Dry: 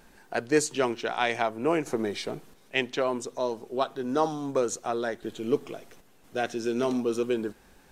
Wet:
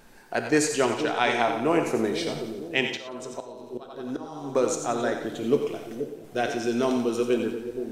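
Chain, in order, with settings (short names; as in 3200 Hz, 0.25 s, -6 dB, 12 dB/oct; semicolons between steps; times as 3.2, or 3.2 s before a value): split-band echo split 520 Hz, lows 0.478 s, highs 89 ms, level -8.5 dB; 2.81–4.55 auto swell 0.553 s; non-linear reverb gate 0.14 s flat, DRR 6.5 dB; gain +2 dB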